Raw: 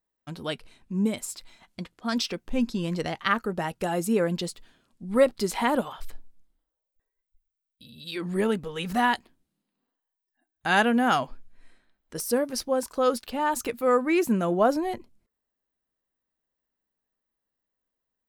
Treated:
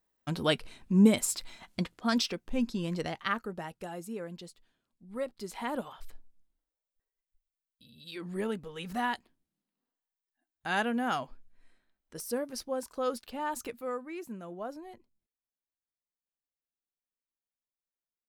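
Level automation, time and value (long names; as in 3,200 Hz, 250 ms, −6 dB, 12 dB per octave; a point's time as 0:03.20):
0:01.81 +4.5 dB
0:02.40 −4.5 dB
0:03.05 −4.5 dB
0:04.16 −15.5 dB
0:05.26 −15.5 dB
0:05.87 −8.5 dB
0:13.65 −8.5 dB
0:14.10 −18 dB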